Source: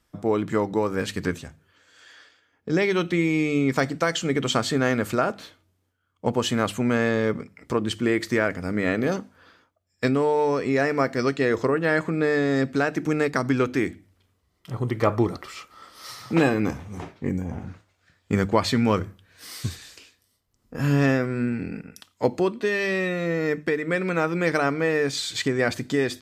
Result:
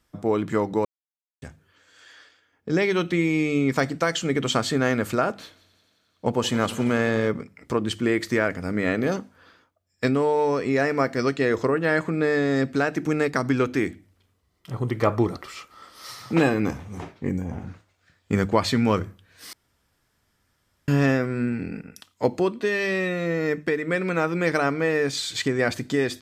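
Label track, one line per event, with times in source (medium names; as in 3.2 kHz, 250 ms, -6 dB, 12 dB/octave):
0.850000	1.420000	mute
5.370000	7.280000	multi-head delay 88 ms, heads first and second, feedback 74%, level -20.5 dB
19.530000	20.880000	room tone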